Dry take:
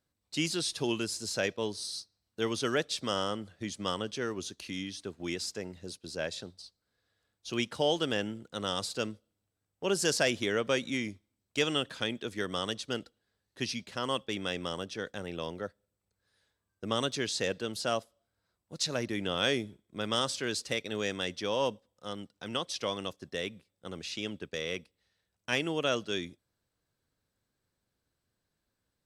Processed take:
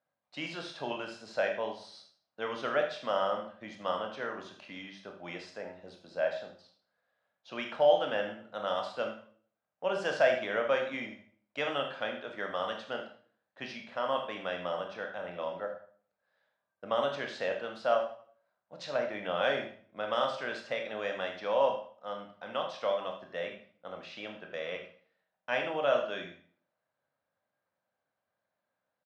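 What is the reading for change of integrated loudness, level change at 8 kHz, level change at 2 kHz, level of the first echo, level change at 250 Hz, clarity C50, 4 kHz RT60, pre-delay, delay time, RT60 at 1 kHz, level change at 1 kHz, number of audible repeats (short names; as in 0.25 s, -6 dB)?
-0.5 dB, under -15 dB, 0.0 dB, -11.5 dB, -8.5 dB, 6.5 dB, 0.45 s, 21 ms, 78 ms, 0.50 s, +4.0 dB, 1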